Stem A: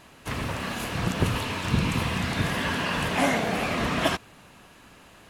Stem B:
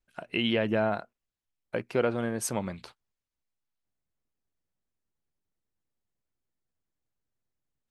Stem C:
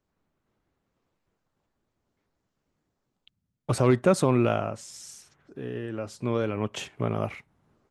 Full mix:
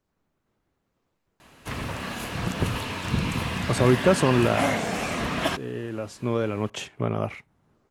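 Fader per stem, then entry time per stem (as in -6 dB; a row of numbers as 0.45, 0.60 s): -1.5 dB, off, +1.5 dB; 1.40 s, off, 0.00 s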